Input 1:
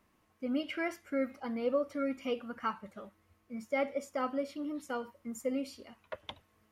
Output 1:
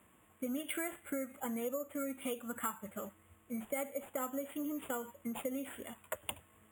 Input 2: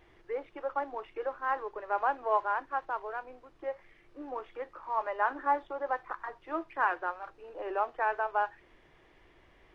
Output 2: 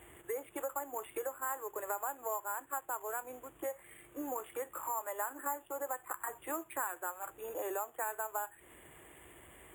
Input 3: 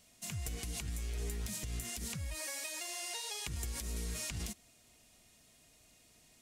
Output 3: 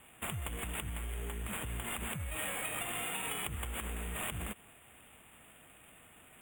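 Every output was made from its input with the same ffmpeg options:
ffmpeg -i in.wav -af "highpass=frequency=51:width=0.5412,highpass=frequency=51:width=1.3066,acrusher=samples=7:mix=1:aa=0.000001,acompressor=threshold=-41dB:ratio=6,asuperstop=centerf=4900:order=8:qfactor=1.3,aemphasis=mode=production:type=cd,volume=5dB" out.wav

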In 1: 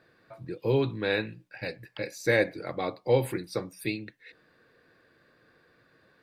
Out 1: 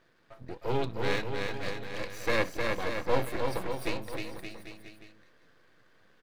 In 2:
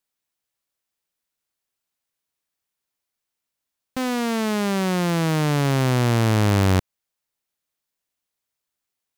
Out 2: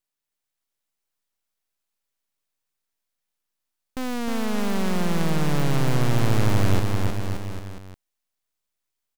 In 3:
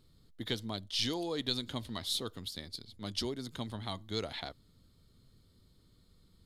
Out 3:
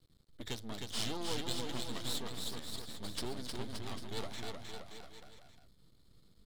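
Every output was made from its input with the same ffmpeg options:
ffmpeg -i in.wav -af "aeval=exprs='max(val(0),0)':channel_layout=same,aecho=1:1:310|573.5|797.5|987.9|1150:0.631|0.398|0.251|0.158|0.1" out.wav

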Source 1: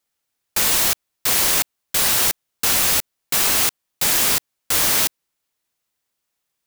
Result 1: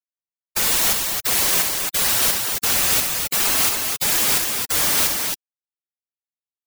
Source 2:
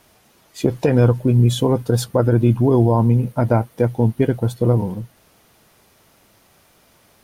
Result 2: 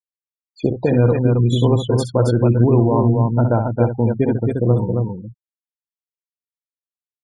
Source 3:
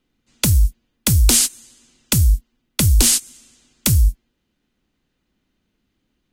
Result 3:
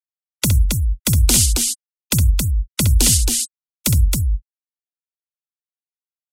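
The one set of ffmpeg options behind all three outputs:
ffmpeg -i in.wav -af "afftfilt=real='re*gte(hypot(re,im),0.0708)':imag='im*gte(hypot(re,im),0.0708)':win_size=1024:overlap=0.75,aecho=1:1:64.14|271.1:0.398|0.631,volume=-1dB" out.wav

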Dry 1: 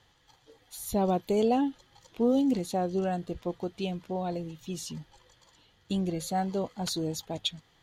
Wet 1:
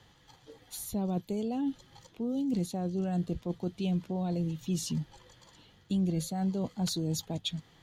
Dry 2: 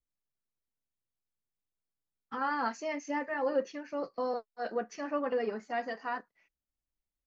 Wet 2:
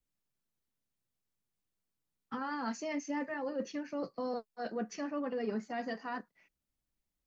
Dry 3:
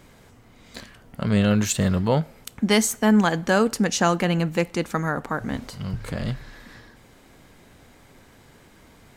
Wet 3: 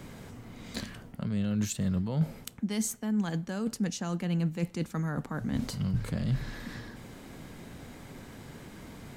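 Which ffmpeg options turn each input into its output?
ffmpeg -i in.wav -filter_complex "[0:a]areverse,acompressor=threshold=-32dB:ratio=16,areverse,equalizer=frequency=180:width_type=o:width=1.9:gain=6.5,acrossover=split=240|3000[link_01][link_02][link_03];[link_02]acompressor=threshold=-48dB:ratio=1.5[link_04];[link_01][link_04][link_03]amix=inputs=3:normalize=0,volume=2.5dB" out.wav

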